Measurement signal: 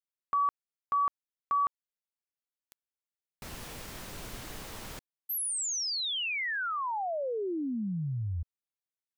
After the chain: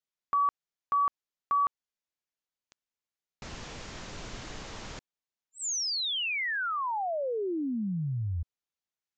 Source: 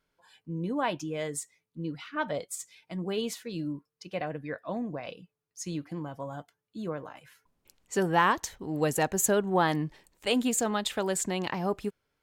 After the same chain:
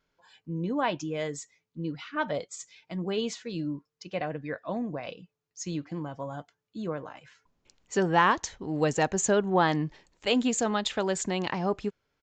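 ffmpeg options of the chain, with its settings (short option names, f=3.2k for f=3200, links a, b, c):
-af "aresample=16000,aresample=44100,volume=1.5dB"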